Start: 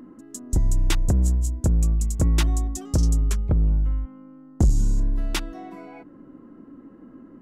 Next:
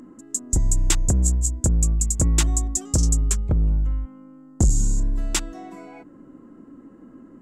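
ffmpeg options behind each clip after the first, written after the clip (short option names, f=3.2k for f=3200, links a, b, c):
-af "equalizer=f=7.5k:w=1.9:g=14"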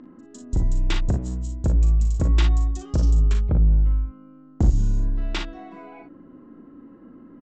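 -filter_complex "[0:a]lowpass=f=4.1k:w=0.5412,lowpass=f=4.1k:w=1.3066,asplit=2[a][b];[b]aecho=0:1:39|56:0.447|0.376[c];[a][c]amix=inputs=2:normalize=0,volume=-1.5dB"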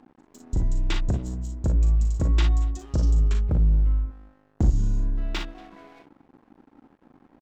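-filter_complex "[0:a]aeval=exprs='sgn(val(0))*max(abs(val(0))-0.00501,0)':c=same,asplit=2[a][b];[b]adelay=233.2,volume=-23dB,highshelf=f=4k:g=-5.25[c];[a][c]amix=inputs=2:normalize=0,volume=-2dB"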